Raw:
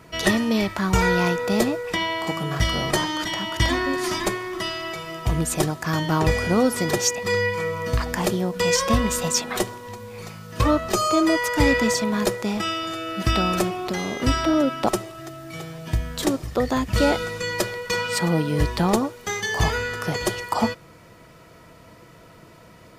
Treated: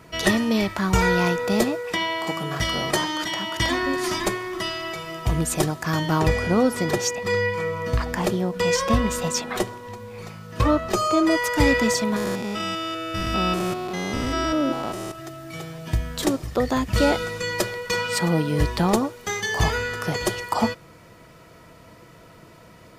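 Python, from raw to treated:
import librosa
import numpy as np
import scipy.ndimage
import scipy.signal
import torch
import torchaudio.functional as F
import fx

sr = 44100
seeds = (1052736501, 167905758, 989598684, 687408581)

y = fx.low_shelf(x, sr, hz=100.0, db=-11.0, at=(1.64, 3.83))
y = fx.high_shelf(y, sr, hz=4100.0, db=-6.0, at=(6.28, 11.31))
y = fx.spec_steps(y, sr, hold_ms=200, at=(12.16, 15.12))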